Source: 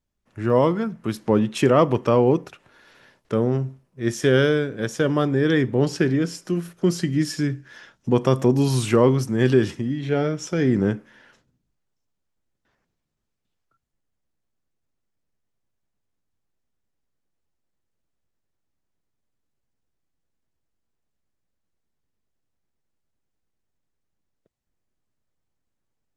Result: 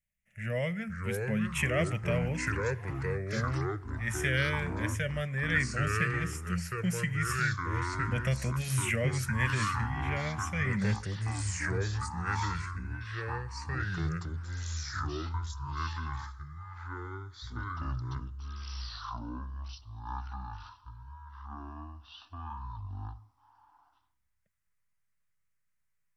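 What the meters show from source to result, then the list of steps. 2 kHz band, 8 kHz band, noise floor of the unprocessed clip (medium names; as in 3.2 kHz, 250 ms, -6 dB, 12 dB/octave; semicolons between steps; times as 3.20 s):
+0.5 dB, -2.0 dB, -78 dBFS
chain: FFT filter 210 Hz 0 dB, 300 Hz -29 dB, 600 Hz -2 dB, 1 kHz -21 dB, 2 kHz +14 dB, 2.8 kHz +6 dB, 4.3 kHz -11 dB, 6.4 kHz +2 dB, 9.4 kHz +8 dB; ever faster or slower copies 424 ms, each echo -4 st, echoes 3; trim -8.5 dB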